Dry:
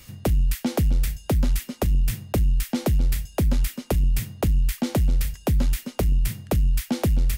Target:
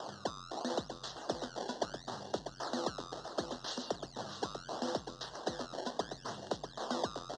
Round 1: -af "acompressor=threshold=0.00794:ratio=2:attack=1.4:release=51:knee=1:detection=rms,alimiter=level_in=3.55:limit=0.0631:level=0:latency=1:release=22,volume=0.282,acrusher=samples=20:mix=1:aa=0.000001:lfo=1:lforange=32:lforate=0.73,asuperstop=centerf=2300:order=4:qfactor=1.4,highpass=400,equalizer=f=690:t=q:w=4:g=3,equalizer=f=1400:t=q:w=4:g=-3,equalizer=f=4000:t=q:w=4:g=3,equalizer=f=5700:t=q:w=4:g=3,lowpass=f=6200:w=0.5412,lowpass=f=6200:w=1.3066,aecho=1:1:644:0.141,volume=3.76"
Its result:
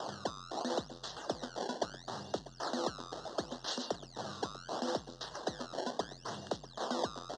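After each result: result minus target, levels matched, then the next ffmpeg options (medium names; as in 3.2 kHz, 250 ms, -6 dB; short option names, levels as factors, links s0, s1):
echo-to-direct -8.5 dB; compression: peak gain reduction -3.5 dB
-af "acompressor=threshold=0.00794:ratio=2:attack=1.4:release=51:knee=1:detection=rms,alimiter=level_in=3.55:limit=0.0631:level=0:latency=1:release=22,volume=0.282,acrusher=samples=20:mix=1:aa=0.000001:lfo=1:lforange=32:lforate=0.73,asuperstop=centerf=2300:order=4:qfactor=1.4,highpass=400,equalizer=f=690:t=q:w=4:g=3,equalizer=f=1400:t=q:w=4:g=-3,equalizer=f=4000:t=q:w=4:g=3,equalizer=f=5700:t=q:w=4:g=3,lowpass=f=6200:w=0.5412,lowpass=f=6200:w=1.3066,aecho=1:1:644:0.376,volume=3.76"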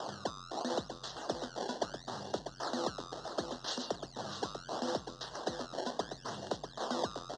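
compression: peak gain reduction -3.5 dB
-af "acompressor=threshold=0.00355:ratio=2:attack=1.4:release=51:knee=1:detection=rms,alimiter=level_in=3.55:limit=0.0631:level=0:latency=1:release=22,volume=0.282,acrusher=samples=20:mix=1:aa=0.000001:lfo=1:lforange=32:lforate=0.73,asuperstop=centerf=2300:order=4:qfactor=1.4,highpass=400,equalizer=f=690:t=q:w=4:g=3,equalizer=f=1400:t=q:w=4:g=-3,equalizer=f=4000:t=q:w=4:g=3,equalizer=f=5700:t=q:w=4:g=3,lowpass=f=6200:w=0.5412,lowpass=f=6200:w=1.3066,aecho=1:1:644:0.376,volume=3.76"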